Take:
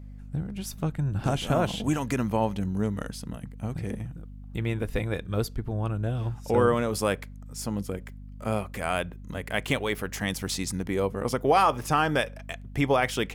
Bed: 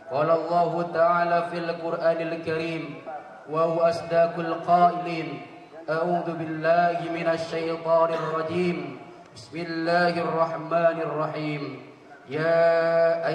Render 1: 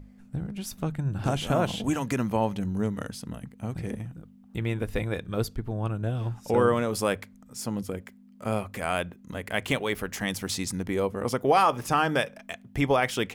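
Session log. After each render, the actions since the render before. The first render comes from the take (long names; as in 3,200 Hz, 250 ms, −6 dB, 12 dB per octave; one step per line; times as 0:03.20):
mains-hum notches 50/100/150 Hz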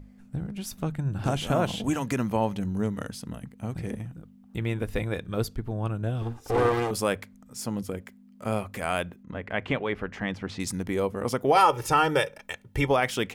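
0:06.22–0:06.91: lower of the sound and its delayed copy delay 2.5 ms
0:09.23–0:10.60: low-pass filter 2,400 Hz
0:11.55–0:12.88: comb filter 2.2 ms, depth 87%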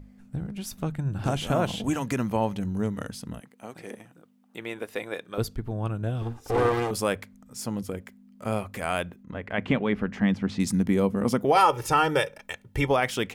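0:03.40–0:05.38: high-pass filter 380 Hz
0:09.58–0:11.45: parametric band 210 Hz +11.5 dB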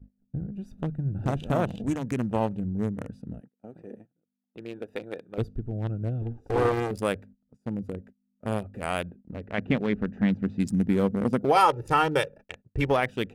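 adaptive Wiener filter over 41 samples
noise gate −47 dBFS, range −22 dB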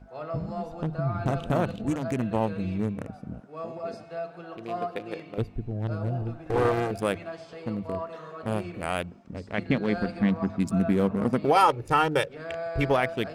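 mix in bed −14 dB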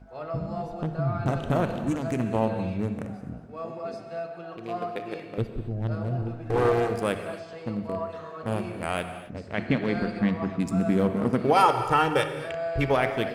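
bucket-brigade delay 63 ms, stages 1,024, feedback 68%, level −17 dB
reverb whose tail is shaped and stops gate 290 ms flat, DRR 8.5 dB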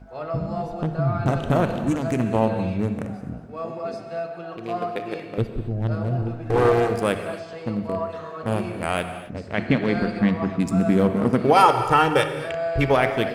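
level +4.5 dB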